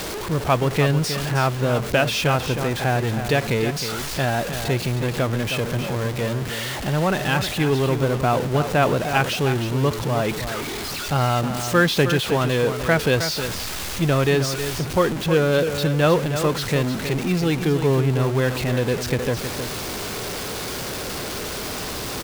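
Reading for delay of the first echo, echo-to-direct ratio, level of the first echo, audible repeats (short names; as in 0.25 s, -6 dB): 0.314 s, -9.0 dB, -9.0 dB, 1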